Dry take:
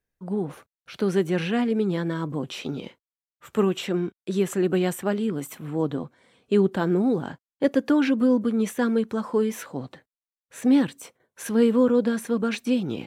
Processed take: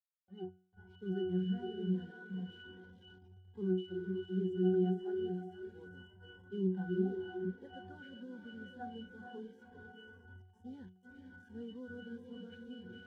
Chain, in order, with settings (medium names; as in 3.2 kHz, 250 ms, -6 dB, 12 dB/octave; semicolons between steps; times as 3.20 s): echo that smears into a reverb 487 ms, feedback 55%, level -5 dB; bit crusher 5-bit; pitch-class resonator F#, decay 0.54 s; spectral noise reduction 16 dB